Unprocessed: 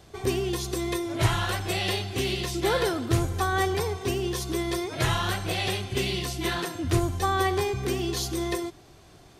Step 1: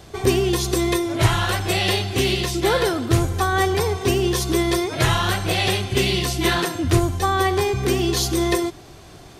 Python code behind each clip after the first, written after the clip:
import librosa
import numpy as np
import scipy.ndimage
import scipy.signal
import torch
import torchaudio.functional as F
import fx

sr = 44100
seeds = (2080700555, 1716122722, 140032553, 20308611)

y = fx.rider(x, sr, range_db=10, speed_s=0.5)
y = F.gain(torch.from_numpy(y), 7.0).numpy()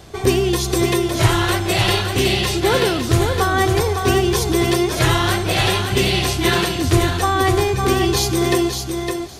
y = fx.echo_feedback(x, sr, ms=560, feedback_pct=17, wet_db=-5.5)
y = F.gain(torch.from_numpy(y), 2.0).numpy()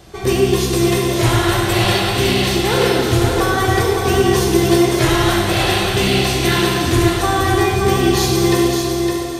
y = fx.rev_plate(x, sr, seeds[0], rt60_s=2.6, hf_ratio=0.85, predelay_ms=0, drr_db=-2.5)
y = F.gain(torch.from_numpy(y), -2.5).numpy()